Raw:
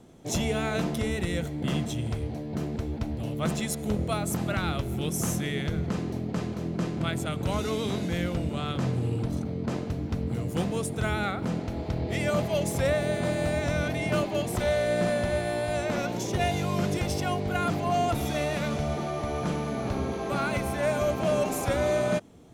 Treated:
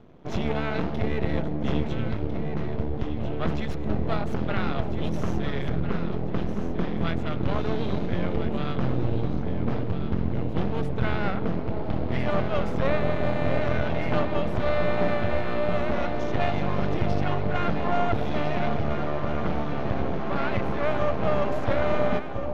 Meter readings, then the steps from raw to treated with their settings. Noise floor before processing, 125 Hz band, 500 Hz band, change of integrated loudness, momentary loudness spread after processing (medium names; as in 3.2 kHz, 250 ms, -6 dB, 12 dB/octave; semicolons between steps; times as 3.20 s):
-35 dBFS, +1.0 dB, +1.0 dB, +1.0 dB, 4 LU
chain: half-wave rectifier; distance through air 280 m; echo whose repeats swap between lows and highs 675 ms, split 870 Hz, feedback 60%, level -5 dB; trim +5.5 dB